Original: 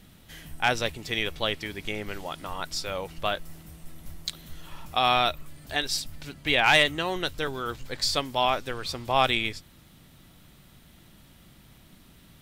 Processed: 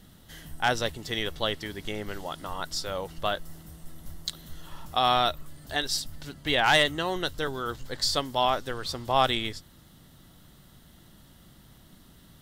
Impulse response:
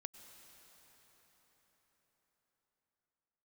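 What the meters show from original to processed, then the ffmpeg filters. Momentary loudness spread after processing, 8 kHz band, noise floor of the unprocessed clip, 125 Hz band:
21 LU, 0.0 dB, −55 dBFS, 0.0 dB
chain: -af "equalizer=frequency=2400:width_type=o:width=0.23:gain=-12.5"

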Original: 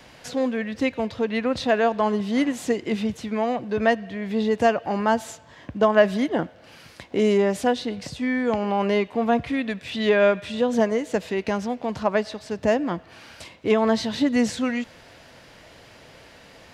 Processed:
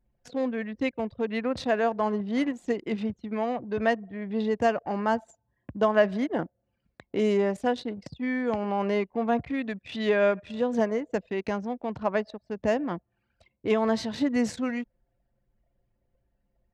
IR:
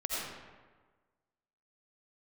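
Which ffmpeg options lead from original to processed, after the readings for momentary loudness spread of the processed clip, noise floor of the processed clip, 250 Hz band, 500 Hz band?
8 LU, −77 dBFS, −4.5 dB, −4.5 dB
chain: -af "anlmdn=10,adynamicequalizer=threshold=0.00562:dfrequency=3300:dqfactor=1.8:tfrequency=3300:tqfactor=1.8:attack=5:release=100:ratio=0.375:range=3:mode=cutabove:tftype=bell,volume=-4.5dB"

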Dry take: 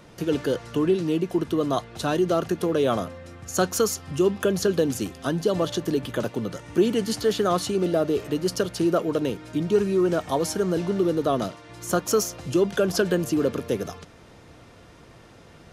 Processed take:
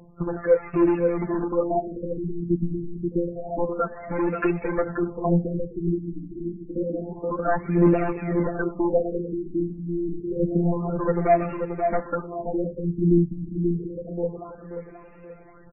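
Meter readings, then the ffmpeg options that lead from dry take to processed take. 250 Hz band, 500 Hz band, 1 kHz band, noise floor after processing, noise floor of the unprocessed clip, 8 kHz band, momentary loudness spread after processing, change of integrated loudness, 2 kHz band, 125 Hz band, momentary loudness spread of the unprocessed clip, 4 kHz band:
+0.5 dB, −1.5 dB, +1.0 dB, −46 dBFS, −49 dBFS, below −40 dB, 10 LU, −1.0 dB, −2.0 dB, +3.0 dB, 7 LU, below −30 dB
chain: -filter_complex "[0:a]agate=range=-10dB:threshold=-38dB:ratio=16:detection=peak,afftfilt=real='hypot(re,im)*cos(PI*b)':imag='0':win_size=1024:overlap=0.75,asplit=2[link_01][link_02];[link_02]acompressor=threshold=-34dB:ratio=8,volume=-1.5dB[link_03];[link_01][link_03]amix=inputs=2:normalize=0,asoftclip=type=hard:threshold=-21dB,highshelf=frequency=4100:gain=10.5,aphaser=in_gain=1:out_gain=1:delay=4.7:decay=0.67:speed=0.38:type=triangular,asplit=2[link_04][link_05];[link_05]adelay=532,lowpass=frequency=1700:poles=1,volume=-5dB,asplit=2[link_06][link_07];[link_07]adelay=532,lowpass=frequency=1700:poles=1,volume=0.39,asplit=2[link_08][link_09];[link_09]adelay=532,lowpass=frequency=1700:poles=1,volume=0.39,asplit=2[link_10][link_11];[link_11]adelay=532,lowpass=frequency=1700:poles=1,volume=0.39,asplit=2[link_12][link_13];[link_13]adelay=532,lowpass=frequency=1700:poles=1,volume=0.39[link_14];[link_04][link_06][link_08][link_10][link_12][link_14]amix=inputs=6:normalize=0,afftfilt=real='re*lt(b*sr/1024,340*pow(2800/340,0.5+0.5*sin(2*PI*0.28*pts/sr)))':imag='im*lt(b*sr/1024,340*pow(2800/340,0.5+0.5*sin(2*PI*0.28*pts/sr)))':win_size=1024:overlap=0.75,volume=1.5dB"

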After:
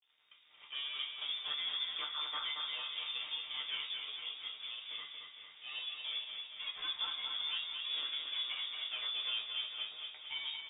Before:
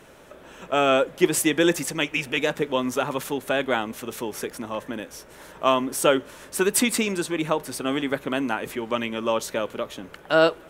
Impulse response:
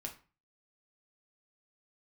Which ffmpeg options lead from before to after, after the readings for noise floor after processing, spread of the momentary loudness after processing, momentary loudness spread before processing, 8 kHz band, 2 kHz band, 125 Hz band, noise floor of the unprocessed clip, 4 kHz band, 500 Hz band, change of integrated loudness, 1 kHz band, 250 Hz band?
−61 dBFS, 7 LU, 13 LU, below −40 dB, −16.5 dB, below −35 dB, −48 dBFS, −2.0 dB, below −40 dB, −13.5 dB, −23.0 dB, below −40 dB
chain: -filter_complex "[0:a]bandreject=frequency=50:width_type=h:width=6,bandreject=frequency=100:width_type=h:width=6,bandreject=frequency=150:width_type=h:width=6,bandreject=frequency=200:width_type=h:width=6,bandreject=frequency=250:width_type=h:width=6,bandreject=frequency=300:width_type=h:width=6,bandreject=frequency=350:width_type=h:width=6,acrossover=split=2900[link_01][link_02];[link_02]acompressor=threshold=-40dB:ratio=4:attack=1:release=60[link_03];[link_01][link_03]amix=inputs=2:normalize=0,bandreject=frequency=2000:width=7.8,acrossover=split=120[link_04][link_05];[link_04]acontrast=54[link_06];[link_06][link_05]amix=inputs=2:normalize=0,alimiter=limit=-15.5dB:level=0:latency=1,aresample=11025,asoftclip=type=tanh:threshold=-24.5dB,aresample=44100,acrossover=split=400[link_07][link_08];[link_07]aeval=exprs='val(0)*(1-0.5/2+0.5/2*cos(2*PI*2.3*n/s))':channel_layout=same[link_09];[link_08]aeval=exprs='val(0)*(1-0.5/2-0.5/2*cos(2*PI*2.3*n/s))':channel_layout=same[link_10];[link_09][link_10]amix=inputs=2:normalize=0,aeval=exprs='sgn(val(0))*max(abs(val(0))-0.00422,0)':channel_layout=same,asplit=2[link_11][link_12];[link_12]adelay=14,volume=-6.5dB[link_13];[link_11][link_13]amix=inputs=2:normalize=0,aecho=1:1:227|454|681|908|1135|1362|1589|1816:0.562|0.326|0.189|0.11|0.0636|0.0369|0.0214|0.0124[link_14];[1:a]atrim=start_sample=2205[link_15];[link_14][link_15]afir=irnorm=-1:irlink=0,lowpass=frequency=3100:width_type=q:width=0.5098,lowpass=frequency=3100:width_type=q:width=0.6013,lowpass=frequency=3100:width_type=q:width=0.9,lowpass=frequency=3100:width_type=q:width=2.563,afreqshift=-3700,volume=-6.5dB"

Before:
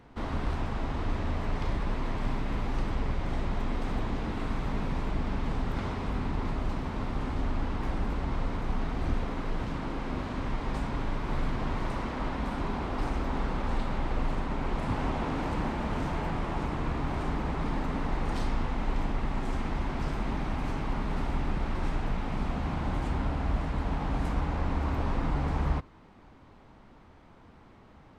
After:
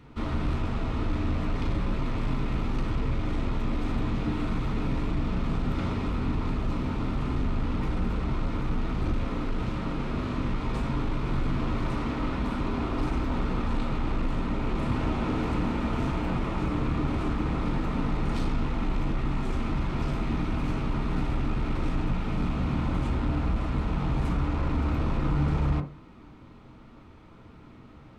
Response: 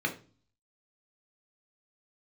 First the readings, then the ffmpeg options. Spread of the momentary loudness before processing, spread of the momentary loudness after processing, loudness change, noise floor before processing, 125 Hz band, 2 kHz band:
3 LU, 3 LU, +3.0 dB, −54 dBFS, +4.5 dB, +0.5 dB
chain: -filter_complex "[0:a]asoftclip=type=tanh:threshold=-23dB,asplit=2[link_01][link_02];[1:a]atrim=start_sample=2205,lowpass=2400[link_03];[link_02][link_03]afir=irnorm=-1:irlink=0,volume=-6.5dB[link_04];[link_01][link_04]amix=inputs=2:normalize=0,volume=1.5dB"

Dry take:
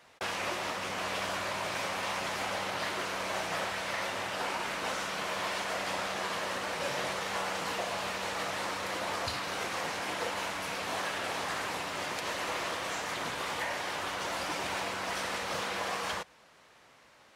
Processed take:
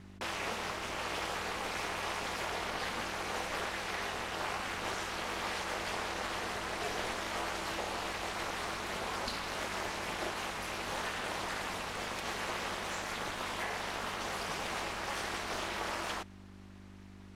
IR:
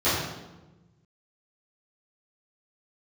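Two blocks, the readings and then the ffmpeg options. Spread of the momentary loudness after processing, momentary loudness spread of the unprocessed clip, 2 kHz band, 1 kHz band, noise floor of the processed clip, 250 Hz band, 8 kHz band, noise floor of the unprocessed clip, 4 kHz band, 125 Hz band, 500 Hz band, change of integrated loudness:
2 LU, 1 LU, −3.0 dB, −3.0 dB, −52 dBFS, −1.0 dB, −3.0 dB, −60 dBFS, −3.0 dB, 0.0 dB, −3.5 dB, −3.0 dB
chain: -af "aeval=exprs='val(0)+0.00398*(sin(2*PI*50*n/s)+sin(2*PI*2*50*n/s)/2+sin(2*PI*3*50*n/s)/3+sin(2*PI*4*50*n/s)/4+sin(2*PI*5*50*n/s)/5)':channel_layout=same,aeval=exprs='val(0)*sin(2*PI*140*n/s)':channel_layout=same"

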